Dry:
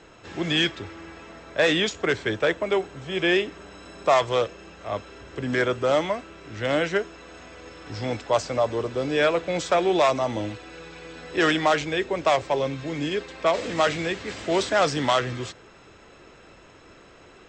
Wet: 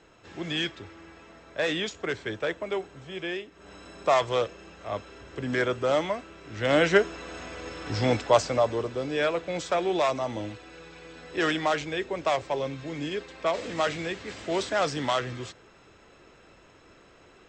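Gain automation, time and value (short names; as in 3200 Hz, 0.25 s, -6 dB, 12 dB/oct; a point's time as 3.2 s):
3.02 s -7 dB
3.5 s -15 dB
3.7 s -3 dB
6.47 s -3 dB
6.94 s +4.5 dB
8.1 s +4.5 dB
9.08 s -5 dB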